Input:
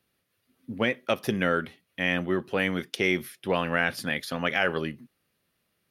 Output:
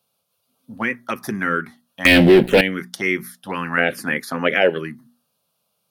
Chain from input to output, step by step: high-pass 170 Hz 12 dB/octave; hum notches 60/120/180/240 Hz; 2.05–2.61 s: waveshaping leveller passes 5; 3.77–4.70 s: peaking EQ 530 Hz +10 dB 1.7 oct; touch-sensitive phaser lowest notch 320 Hz, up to 1.2 kHz, full sweep at -16 dBFS; loudspeaker Doppler distortion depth 0.12 ms; trim +7 dB

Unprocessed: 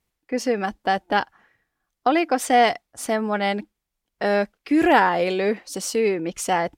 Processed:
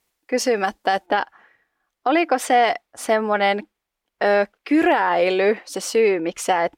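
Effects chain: tone controls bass -12 dB, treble +2 dB, from 1.05 s treble -7 dB; peak limiter -15 dBFS, peak gain reduction 11 dB; trim +6 dB

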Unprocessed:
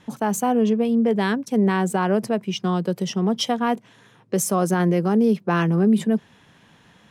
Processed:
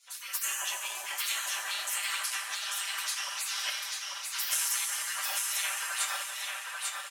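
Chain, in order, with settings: two-slope reverb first 0.22 s, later 3.4 s, from -19 dB, DRR -5.5 dB; AM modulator 120 Hz, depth 15%; spectral gate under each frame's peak -25 dB weak; high-pass 1.2 kHz 12 dB/octave; treble shelf 6.1 kHz +4 dB; comb 5.1 ms; feedback delay 843 ms, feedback 30%, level -3 dB

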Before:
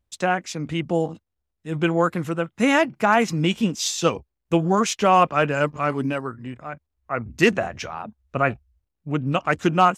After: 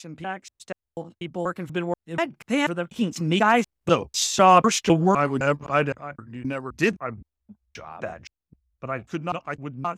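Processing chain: slices played last to first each 252 ms, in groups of 3; Doppler pass-by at 4.56 s, 14 m/s, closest 18 m; trim +1.5 dB

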